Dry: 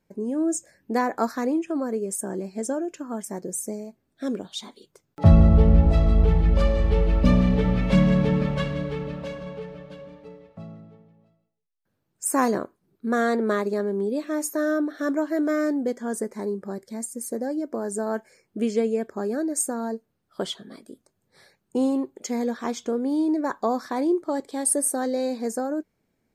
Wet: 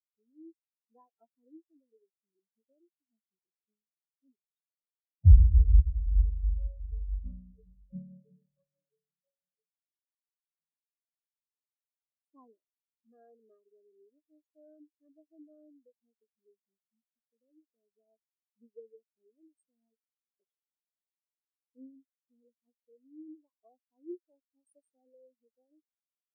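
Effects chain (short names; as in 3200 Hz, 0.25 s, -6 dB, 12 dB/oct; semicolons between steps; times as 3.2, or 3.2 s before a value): dynamic EQ 150 Hz, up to -5 dB, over -32 dBFS, Q 0.79; spectral expander 4:1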